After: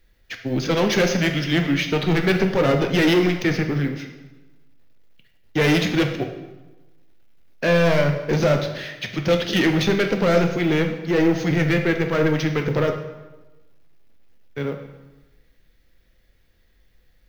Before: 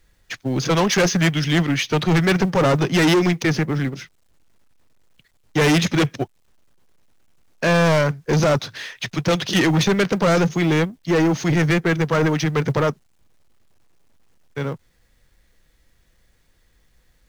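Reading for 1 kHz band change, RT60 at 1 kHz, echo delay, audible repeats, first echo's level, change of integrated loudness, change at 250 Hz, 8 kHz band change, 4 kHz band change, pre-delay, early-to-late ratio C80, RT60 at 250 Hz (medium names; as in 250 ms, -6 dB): -4.0 dB, 1.1 s, no echo, no echo, no echo, -1.5 dB, -1.0 dB, -7.0 dB, -1.5 dB, 8 ms, 9.5 dB, 1.2 s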